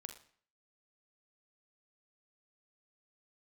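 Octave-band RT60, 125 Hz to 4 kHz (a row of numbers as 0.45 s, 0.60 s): 0.55 s, 0.55 s, 0.50 s, 0.55 s, 0.50 s, 0.50 s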